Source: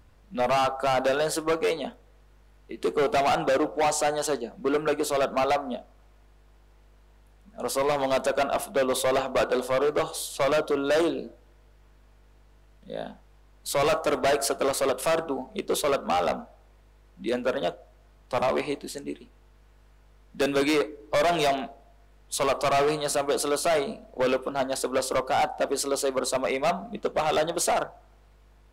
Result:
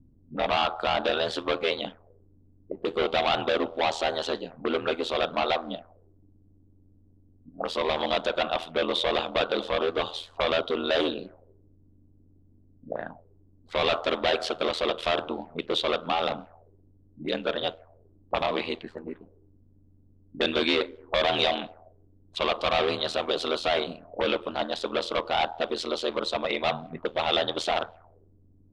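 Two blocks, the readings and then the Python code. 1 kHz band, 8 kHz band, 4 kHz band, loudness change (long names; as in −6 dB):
−2.0 dB, −15.5 dB, +5.5 dB, −1.5 dB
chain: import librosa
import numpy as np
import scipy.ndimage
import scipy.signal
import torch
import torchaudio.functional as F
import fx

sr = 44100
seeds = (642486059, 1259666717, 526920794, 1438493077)

y = x * np.sin(2.0 * np.pi * 41.0 * np.arange(len(x)) / sr)
y = fx.envelope_lowpass(y, sr, base_hz=240.0, top_hz=3500.0, q=4.0, full_db=-29.5, direction='up')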